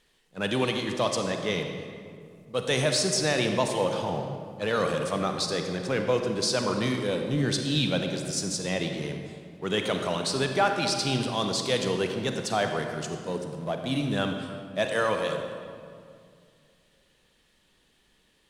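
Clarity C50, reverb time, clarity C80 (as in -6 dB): 5.0 dB, 2.2 s, 6.0 dB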